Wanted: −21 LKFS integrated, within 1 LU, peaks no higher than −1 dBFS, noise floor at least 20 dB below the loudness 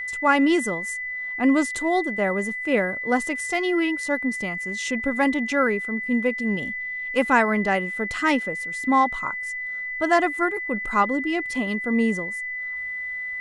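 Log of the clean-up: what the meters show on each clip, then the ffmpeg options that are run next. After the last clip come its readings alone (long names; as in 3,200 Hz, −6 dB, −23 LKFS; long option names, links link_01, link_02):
interfering tone 2,000 Hz; level of the tone −28 dBFS; integrated loudness −23.5 LKFS; sample peak −6.0 dBFS; target loudness −21.0 LKFS
→ -af "bandreject=frequency=2000:width=30"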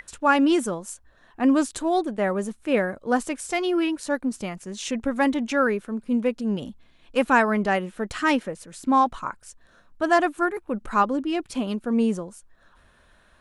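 interfering tone none found; integrated loudness −24.0 LKFS; sample peak −6.5 dBFS; target loudness −21.0 LKFS
→ -af "volume=3dB"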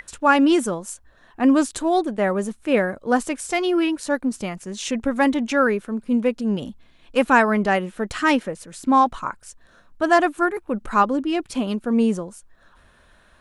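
integrated loudness −21.0 LKFS; sample peak −3.5 dBFS; background noise floor −55 dBFS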